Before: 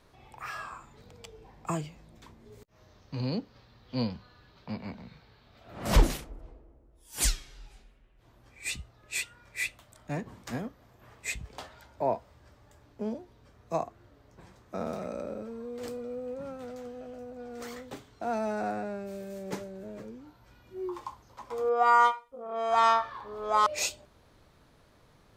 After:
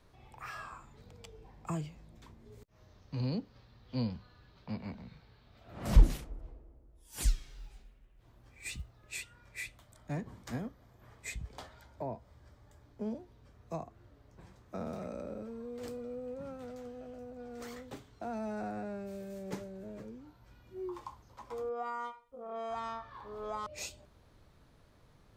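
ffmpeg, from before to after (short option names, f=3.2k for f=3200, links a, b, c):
-filter_complex "[0:a]asettb=1/sr,asplit=3[a][b][c];[a]atrim=end=7.154[d];[b]atrim=start=7.15:end=9.13,asetpts=PTS-STARTPTS,afade=t=in:d=0.004:c=qsin,afade=t=out:st=1.976:d=0.004:c=qsin,acrusher=bits=7:mode=log:mix=0:aa=0.000001[e];[c]atrim=start=9.126[f];[d][e]acrossfade=d=0.004:c1=hsin:c2=qsin[g];[g][f]acrossfade=d=0.004:c1=qsin:c2=hsin,asettb=1/sr,asplit=3[h][i][j];[h]atrim=end=9.644[k];[i]atrim=start=9.64:end=13.07,asetpts=PTS-STARTPTS,afade=t=in:d=0.004:c=qsin,afade=t=out:st=3.426:d=0.004:c=qsin,bandreject=f=2.7k:w=12[l];[j]atrim=start=13.066[m];[k][l]acrossfade=d=0.004:c1=hsin:c2=qsin[n];[n][m]acrossfade=d=0.004:c1=qsin:c2=hsin,lowshelf=f=170:g=6.5,acrossover=split=280[o][p];[p]acompressor=threshold=-33dB:ratio=5[q];[o][q]amix=inputs=2:normalize=0,volume=-5dB"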